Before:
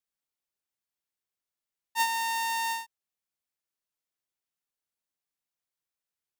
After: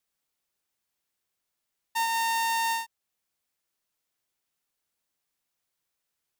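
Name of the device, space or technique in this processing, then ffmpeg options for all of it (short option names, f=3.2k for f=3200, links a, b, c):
soft clipper into limiter: -af "asoftclip=type=tanh:threshold=-23dB,alimiter=level_in=6.5dB:limit=-24dB:level=0:latency=1:release=462,volume=-6.5dB,volume=8dB"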